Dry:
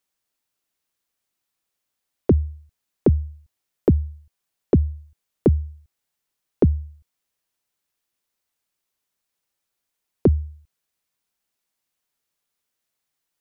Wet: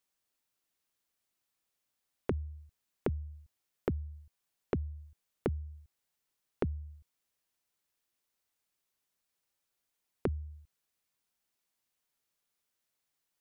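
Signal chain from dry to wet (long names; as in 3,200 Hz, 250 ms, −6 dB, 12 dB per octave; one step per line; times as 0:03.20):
downward compressor 6 to 1, threshold −28 dBFS, peak gain reduction 15 dB
level −3.5 dB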